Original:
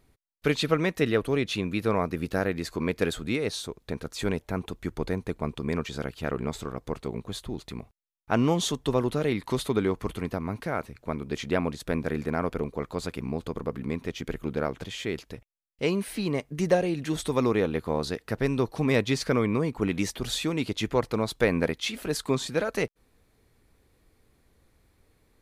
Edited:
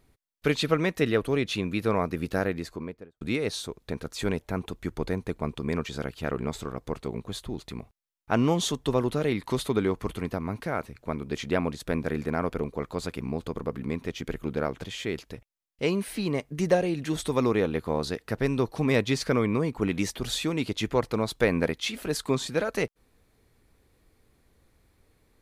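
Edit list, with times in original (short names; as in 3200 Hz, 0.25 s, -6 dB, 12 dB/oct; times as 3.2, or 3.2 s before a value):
2.39–3.21 studio fade out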